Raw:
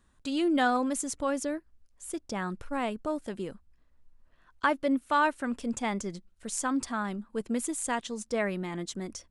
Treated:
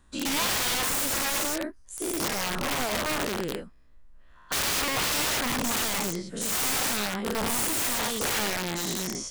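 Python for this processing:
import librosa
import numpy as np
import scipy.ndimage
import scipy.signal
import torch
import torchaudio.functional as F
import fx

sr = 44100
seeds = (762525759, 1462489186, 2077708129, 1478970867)

y = fx.spec_dilate(x, sr, span_ms=240)
y = (np.mod(10.0 ** (22.0 / 20.0) * y + 1.0, 2.0) - 1.0) / 10.0 ** (22.0 / 20.0)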